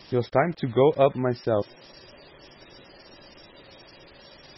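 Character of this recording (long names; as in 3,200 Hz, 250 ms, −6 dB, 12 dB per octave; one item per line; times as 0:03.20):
a quantiser's noise floor 8 bits, dither none
MP3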